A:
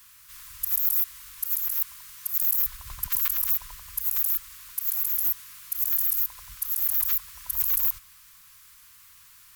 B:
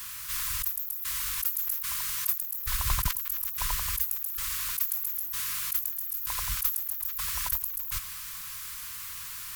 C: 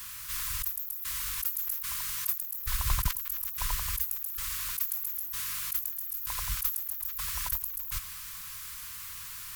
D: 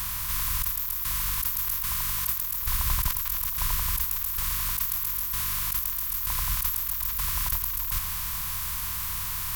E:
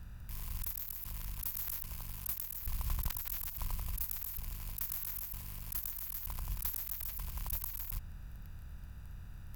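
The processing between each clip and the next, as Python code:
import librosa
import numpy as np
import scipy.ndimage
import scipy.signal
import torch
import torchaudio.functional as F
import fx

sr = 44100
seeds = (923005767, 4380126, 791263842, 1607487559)

y1 = fx.over_compress(x, sr, threshold_db=-36.0, ratio=-1.0)
y1 = F.gain(torch.from_numpy(y1), 5.0).numpy()
y2 = fx.low_shelf(y1, sr, hz=150.0, db=3.5)
y2 = F.gain(torch.from_numpy(y2), -2.5).numpy()
y3 = fx.bin_compress(y2, sr, power=0.4)
y3 = F.gain(torch.from_numpy(y3), -1.5).numpy()
y4 = fx.wiener(y3, sr, points=41)
y4 = F.gain(torch.from_numpy(y4), -7.5).numpy()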